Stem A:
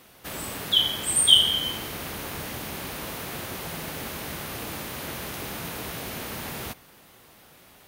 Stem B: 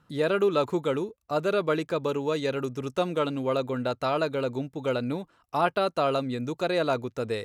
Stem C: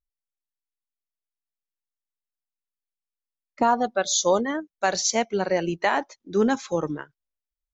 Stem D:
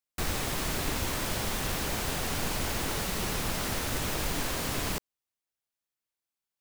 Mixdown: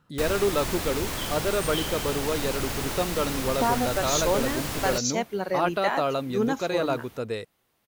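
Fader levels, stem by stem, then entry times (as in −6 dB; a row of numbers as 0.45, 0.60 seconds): −18.5, −1.0, −4.5, +0.5 decibels; 0.45, 0.00, 0.00, 0.00 seconds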